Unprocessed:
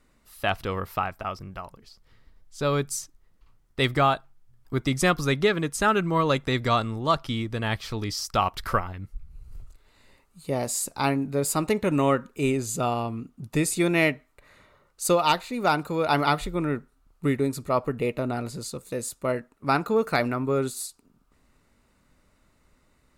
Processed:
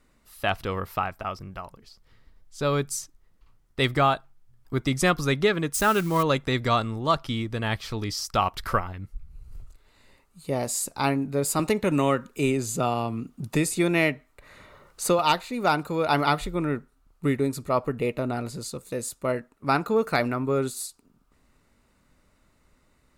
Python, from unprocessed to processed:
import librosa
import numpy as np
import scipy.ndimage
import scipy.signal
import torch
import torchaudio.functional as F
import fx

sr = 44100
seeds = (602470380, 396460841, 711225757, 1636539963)

y = fx.crossing_spikes(x, sr, level_db=-26.0, at=(5.74, 6.23))
y = fx.band_squash(y, sr, depth_pct=40, at=(11.59, 15.19))